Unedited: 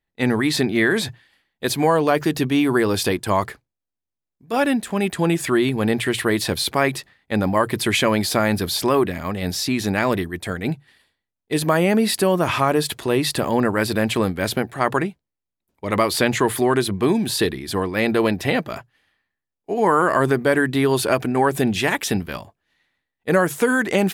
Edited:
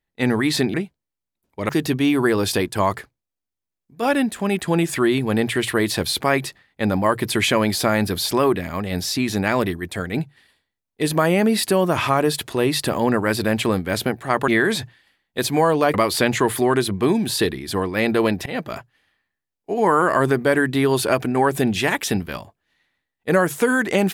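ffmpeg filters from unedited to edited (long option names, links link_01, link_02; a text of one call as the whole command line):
ffmpeg -i in.wav -filter_complex "[0:a]asplit=6[link_01][link_02][link_03][link_04][link_05][link_06];[link_01]atrim=end=0.742[link_07];[link_02]atrim=start=14.988:end=15.942[link_08];[link_03]atrim=start=2.198:end=14.992[link_09];[link_04]atrim=start=0.738:end=2.202[link_10];[link_05]atrim=start=15.938:end=18.46,asetpts=PTS-STARTPTS,afade=type=out:start_time=2.518:duration=0.004:curve=hsin:silence=0.0707946[link_11];[link_06]atrim=start=18.46,asetpts=PTS-STARTPTS,afade=type=in:duration=0.29:curve=qsin:silence=0.0707946[link_12];[link_07][link_08]acrossfade=duration=0.004:curve1=hsin:curve2=hsin[link_13];[link_13][link_09]acrossfade=duration=0.004:curve1=hsin:curve2=hsin[link_14];[link_14][link_10]acrossfade=duration=0.004:curve1=hsin:curve2=hsin[link_15];[link_11][link_12]concat=n=2:v=0:a=1[link_16];[link_15][link_16]acrossfade=duration=0.004:curve1=hsin:curve2=hsin" out.wav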